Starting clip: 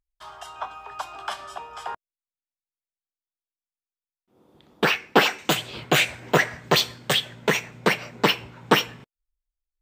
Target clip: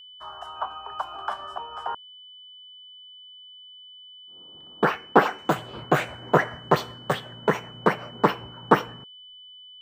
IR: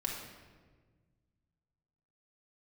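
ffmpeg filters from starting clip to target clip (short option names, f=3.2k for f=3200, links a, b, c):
-af "highshelf=f=1.9k:t=q:w=1.5:g=-13.5,aeval=exprs='val(0)+0.00631*sin(2*PI*3000*n/s)':c=same"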